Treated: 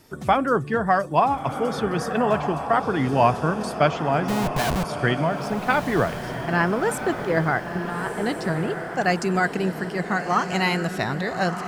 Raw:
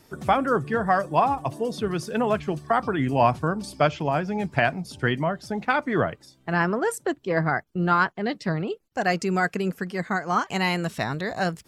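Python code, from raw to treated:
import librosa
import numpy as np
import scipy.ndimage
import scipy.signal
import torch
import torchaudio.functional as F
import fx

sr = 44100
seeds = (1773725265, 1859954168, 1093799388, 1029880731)

y = fx.schmitt(x, sr, flips_db=-31.5, at=(4.28, 4.84))
y = fx.over_compress(y, sr, threshold_db=-32.0, ratio=-1.0, at=(7.67, 8.09))
y = fx.echo_diffused(y, sr, ms=1328, feedback_pct=51, wet_db=-8.0)
y = y * librosa.db_to_amplitude(1.5)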